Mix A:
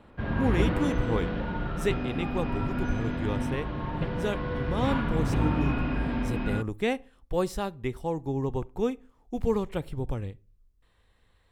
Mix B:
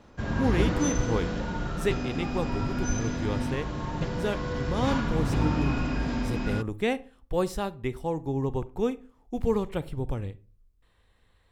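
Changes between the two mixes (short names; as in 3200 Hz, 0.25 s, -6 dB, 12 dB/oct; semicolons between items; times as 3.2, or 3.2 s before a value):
speech: send +6.5 dB; background: remove LPF 3400 Hz 24 dB/oct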